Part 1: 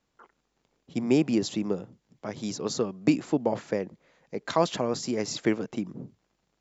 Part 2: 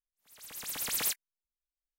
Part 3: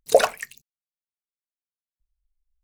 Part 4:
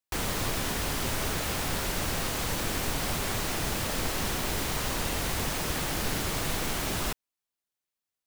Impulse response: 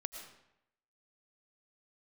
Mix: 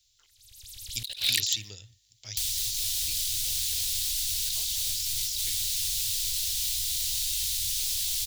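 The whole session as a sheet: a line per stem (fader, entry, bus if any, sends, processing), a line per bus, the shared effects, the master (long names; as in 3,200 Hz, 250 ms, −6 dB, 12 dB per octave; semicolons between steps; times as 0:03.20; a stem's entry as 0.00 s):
−4.5 dB, 0.00 s, no send, no processing
−14.0 dB, 0.00 s, no send, spectral tilt −4.5 dB per octave
−5.0 dB, 0.95 s, send −21 dB, leveller curve on the samples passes 5; high shelf with overshoot 4,900 Hz −8.5 dB, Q 3; automatic ducking −11 dB, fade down 1.90 s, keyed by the first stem
−0.5 dB, 2.25 s, send −5 dB, parametric band 250 Hz −12.5 dB 1.6 octaves; flanger 1.6 Hz, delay 5.8 ms, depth 5.9 ms, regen −68%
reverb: on, RT60 0.80 s, pre-delay 70 ms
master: drawn EQ curve 110 Hz 0 dB, 160 Hz −29 dB, 1,200 Hz −25 dB, 3,700 Hz +14 dB; compressor whose output falls as the input rises −30 dBFS, ratio −1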